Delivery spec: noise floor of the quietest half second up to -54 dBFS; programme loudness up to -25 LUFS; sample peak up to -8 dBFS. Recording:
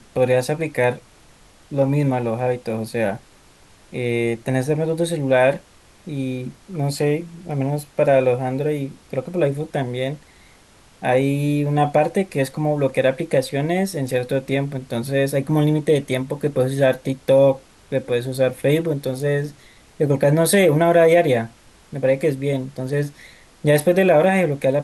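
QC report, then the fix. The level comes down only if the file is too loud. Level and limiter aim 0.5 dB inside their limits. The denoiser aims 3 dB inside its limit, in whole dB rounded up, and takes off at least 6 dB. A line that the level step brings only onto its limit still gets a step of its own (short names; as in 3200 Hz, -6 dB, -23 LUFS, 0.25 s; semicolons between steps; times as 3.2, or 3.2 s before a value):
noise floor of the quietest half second -50 dBFS: fail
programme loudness -20.0 LUFS: fail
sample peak -6.0 dBFS: fail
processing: gain -5.5 dB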